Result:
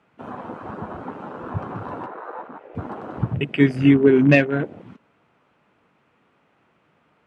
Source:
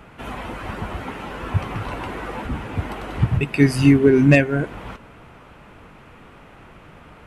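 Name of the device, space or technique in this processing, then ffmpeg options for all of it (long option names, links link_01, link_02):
over-cleaned archive recording: -filter_complex "[0:a]asettb=1/sr,asplit=3[link_01][link_02][link_03];[link_01]atrim=end=2.064[link_04];[link_02]atrim=start=2.06:end=2.75,asetpts=PTS-STARTPTS,afade=type=in:duration=0.004:curve=qsin,afade=type=out:start_time=0.686:duration=0.004:curve=qsin,acrossover=split=400 2600:gain=0.158 1 0.2[link_05][link_06][link_07];[link_05][link_06][link_07]amix=inputs=3:normalize=0[link_08];[link_03]atrim=start=2.746[link_09];[link_04][link_08]acrossfade=duration=0.004:curve1=hsin:curve2=qsin[link_10];[link_10][link_09]acrossfade=duration=0.004:curve1=qsin:curve2=hsin,highpass=150,lowpass=7600,afwtdn=0.0355"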